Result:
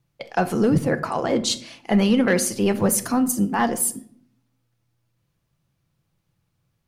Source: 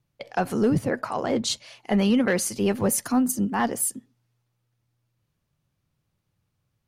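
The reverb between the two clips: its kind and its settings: shoebox room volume 910 m³, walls furnished, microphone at 0.73 m; gain +3 dB

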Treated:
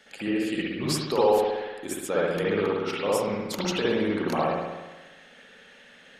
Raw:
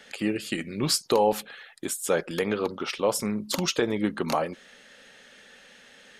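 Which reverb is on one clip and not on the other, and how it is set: spring tank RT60 1.2 s, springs 59 ms, chirp 50 ms, DRR -6.5 dB; gain -6 dB

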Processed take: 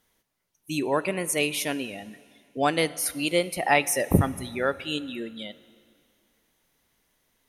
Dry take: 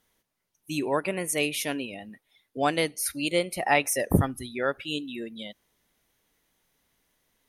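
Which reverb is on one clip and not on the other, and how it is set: plate-style reverb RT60 2.3 s, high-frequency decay 0.95×, DRR 17 dB; gain +1.5 dB

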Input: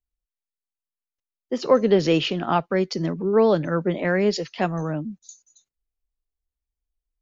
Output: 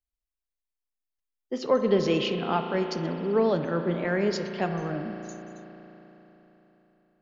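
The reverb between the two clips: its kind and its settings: spring tank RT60 3.9 s, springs 35 ms, chirp 30 ms, DRR 5 dB; gain -5.5 dB

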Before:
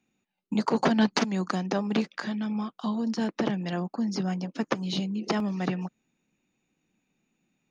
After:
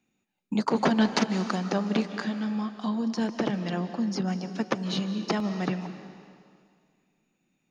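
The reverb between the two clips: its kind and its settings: digital reverb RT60 2.1 s, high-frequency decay 1×, pre-delay 0.11 s, DRR 10 dB

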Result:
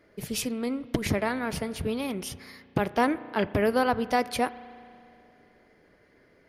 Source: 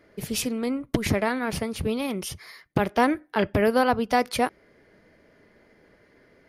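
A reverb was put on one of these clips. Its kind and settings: spring tank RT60 2.6 s, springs 34 ms, chirp 45 ms, DRR 16 dB; gain -3 dB

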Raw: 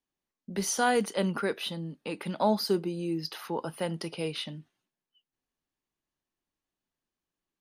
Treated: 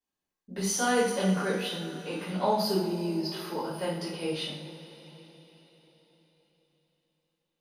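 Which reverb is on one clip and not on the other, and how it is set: two-slope reverb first 0.55 s, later 4.5 s, from -18 dB, DRR -9 dB; gain -8.5 dB

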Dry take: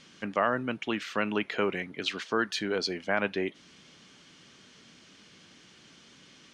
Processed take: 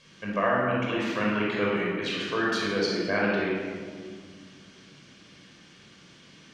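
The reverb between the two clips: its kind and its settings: shoebox room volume 2500 m³, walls mixed, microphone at 5.5 m; gain -5.5 dB

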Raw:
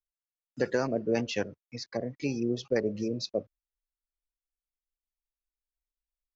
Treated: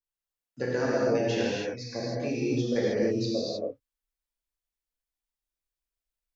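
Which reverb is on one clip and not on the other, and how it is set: non-linear reverb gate 0.34 s flat, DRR -7 dB; gain -5 dB

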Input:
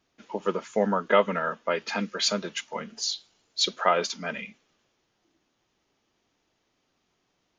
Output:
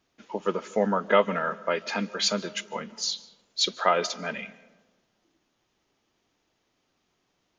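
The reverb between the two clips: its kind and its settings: digital reverb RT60 1.3 s, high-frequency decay 0.35×, pre-delay 0.11 s, DRR 19.5 dB

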